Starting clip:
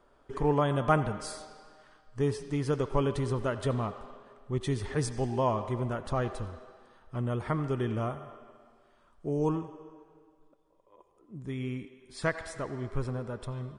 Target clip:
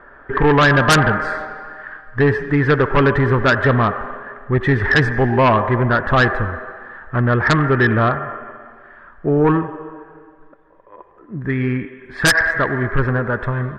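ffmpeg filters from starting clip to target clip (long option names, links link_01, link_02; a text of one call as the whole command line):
ffmpeg -i in.wav -filter_complex "[0:a]lowpass=frequency=1700:width_type=q:width=8.5,asplit=2[link_01][link_02];[link_02]aeval=exprs='0.531*sin(PI/2*5.62*val(0)/0.531)':channel_layout=same,volume=-5dB[link_03];[link_01][link_03]amix=inputs=2:normalize=0" out.wav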